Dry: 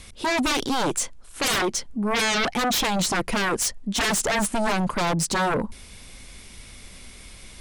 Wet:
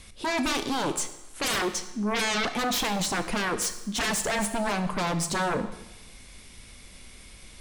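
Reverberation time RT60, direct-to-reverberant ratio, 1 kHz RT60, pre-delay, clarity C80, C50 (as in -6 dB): 1.0 s, 9.0 dB, 1.0 s, 19 ms, 13.0 dB, 11.0 dB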